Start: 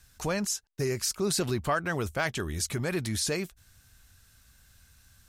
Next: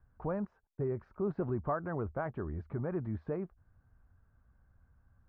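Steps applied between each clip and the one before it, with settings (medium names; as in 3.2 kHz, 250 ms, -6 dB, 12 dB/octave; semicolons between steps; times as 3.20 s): low-pass 1.2 kHz 24 dB/octave; trim -4.5 dB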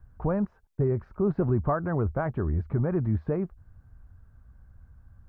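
bass shelf 170 Hz +9 dB; trim +6 dB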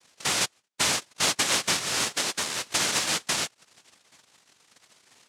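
noise-vocoded speech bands 1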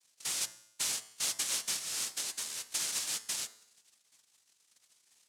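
pre-emphasis filter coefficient 0.8; feedback comb 110 Hz, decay 0.84 s, harmonics all, mix 50%; de-hum 59.54 Hz, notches 35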